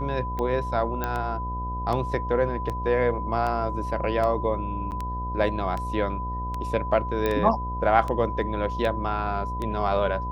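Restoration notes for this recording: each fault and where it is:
mains buzz 60 Hz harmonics 13 −32 dBFS
scratch tick 78 rpm −18 dBFS
whistle 1,000 Hz −31 dBFS
0:01.04: click −13 dBFS
0:04.91–0:04.92: drop-out 9 ms
0:07.26: click −13 dBFS

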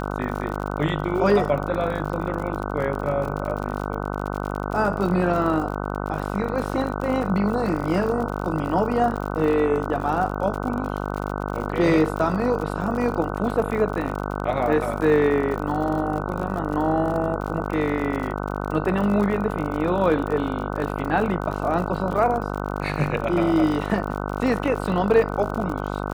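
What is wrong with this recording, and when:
mains buzz 50 Hz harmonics 30 −28 dBFS
surface crackle 58 per second −29 dBFS

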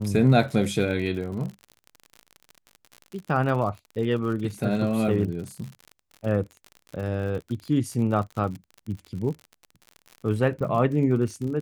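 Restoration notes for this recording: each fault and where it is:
surface crackle 58 per second −33 dBFS

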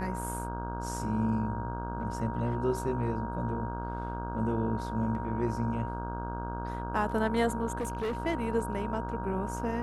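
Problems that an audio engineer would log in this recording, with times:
mains buzz 60 Hz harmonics 27 −37 dBFS
whistle 940 Hz −38 dBFS
0:07.78–0:08.18: clipping −28.5 dBFS

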